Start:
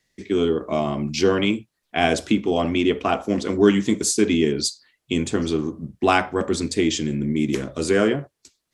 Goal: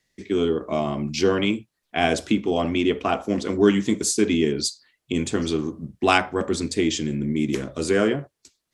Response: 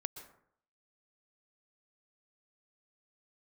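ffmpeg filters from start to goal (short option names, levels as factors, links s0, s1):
-filter_complex "[0:a]asettb=1/sr,asplit=3[s0][s1][s2];[s0]atrim=end=5.124[s3];[s1]atrim=start=5.12:end=6.18,asetpts=PTS-STARTPTS,afade=t=in:d=0.004:c=qsin,afade=t=out:st=1.056:d=0.004:c=qsin,adynamicequalizer=threshold=0.0316:dfrequency=1700:dqfactor=0.7:tfrequency=1700:tqfactor=0.7:attack=5:release=100:ratio=0.375:range=3:mode=boostabove:tftype=highshelf[s4];[s2]atrim=start=6.176[s5];[s3][s4]acrossfade=d=0.004:c1=hsin:c2=qsin[s6];[s6][s5]acrossfade=d=0.004:c1=qsin:c2=hsin,volume=0.841"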